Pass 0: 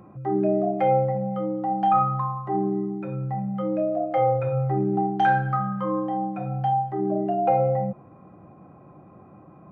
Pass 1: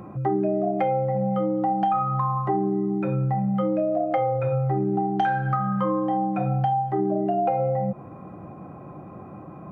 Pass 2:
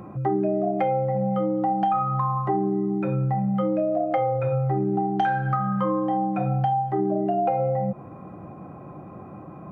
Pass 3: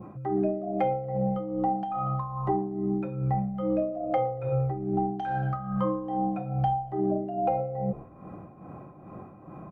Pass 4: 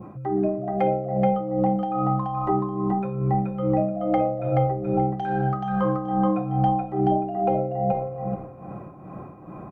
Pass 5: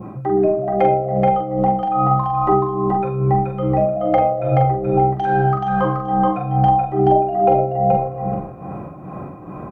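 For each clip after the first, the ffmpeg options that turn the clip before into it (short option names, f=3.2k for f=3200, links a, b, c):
-af "acompressor=threshold=-28dB:ratio=10,volume=8dB"
-af anull
-filter_complex "[0:a]asplit=6[a][b][c][d][e][f];[b]adelay=116,afreqshift=-65,volume=-21.5dB[g];[c]adelay=232,afreqshift=-130,volume=-25.8dB[h];[d]adelay=348,afreqshift=-195,volume=-30.1dB[i];[e]adelay=464,afreqshift=-260,volume=-34.4dB[j];[f]adelay=580,afreqshift=-325,volume=-38.7dB[k];[a][g][h][i][j][k]amix=inputs=6:normalize=0,adynamicequalizer=threshold=0.00631:dfrequency=1700:dqfactor=1.2:tfrequency=1700:tqfactor=1.2:attack=5:release=100:ratio=0.375:range=3:mode=cutabove:tftype=bell,tremolo=f=2.4:d=0.65,volume=-1.5dB"
-af "aecho=1:1:428|856|1284:0.708|0.142|0.0283,volume=3dB"
-filter_complex "[0:a]asplit=2[a][b];[b]adelay=43,volume=-5dB[c];[a][c]amix=inputs=2:normalize=0,volume=6.5dB"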